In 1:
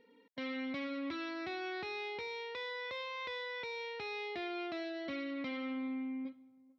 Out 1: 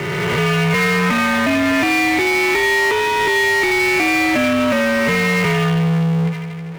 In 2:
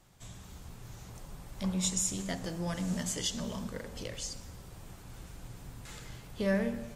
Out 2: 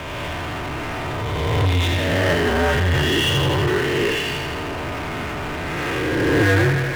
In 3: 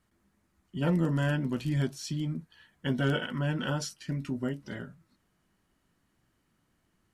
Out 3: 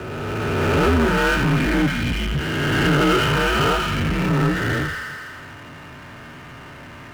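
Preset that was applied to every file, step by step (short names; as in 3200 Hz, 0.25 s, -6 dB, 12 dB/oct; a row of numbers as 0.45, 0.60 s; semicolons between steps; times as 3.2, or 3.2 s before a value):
spectral swells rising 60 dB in 1.55 s; notch comb 300 Hz; thin delay 82 ms, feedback 64%, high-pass 1600 Hz, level -4 dB; mistuned SSB -97 Hz 210–2900 Hz; power-law curve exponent 0.5; normalise peaks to -9 dBFS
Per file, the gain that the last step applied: +20.0, +11.5, +7.5 dB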